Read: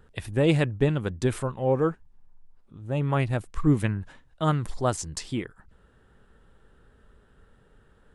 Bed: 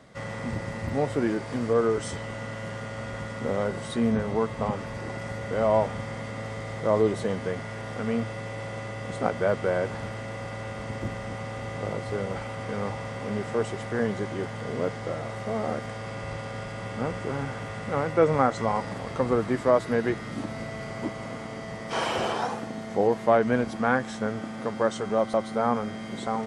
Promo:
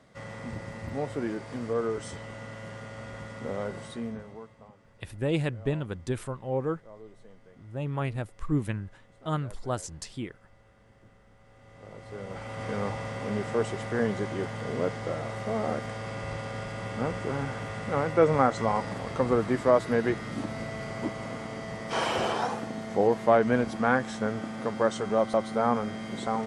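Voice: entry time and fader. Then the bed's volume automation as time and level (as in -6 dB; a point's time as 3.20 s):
4.85 s, -6.0 dB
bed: 3.81 s -6 dB
4.73 s -26 dB
11.36 s -26 dB
12.65 s -0.5 dB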